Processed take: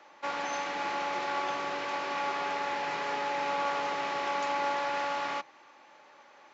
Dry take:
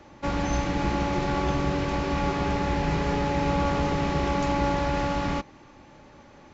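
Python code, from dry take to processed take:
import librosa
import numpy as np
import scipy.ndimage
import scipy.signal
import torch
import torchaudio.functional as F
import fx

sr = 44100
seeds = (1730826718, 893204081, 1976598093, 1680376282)

y = fx.octave_divider(x, sr, octaves=2, level_db=-2.0)
y = scipy.signal.sosfilt(scipy.signal.butter(2, 750.0, 'highpass', fs=sr, output='sos'), y)
y = fx.high_shelf(y, sr, hz=6500.0, db=-9.5)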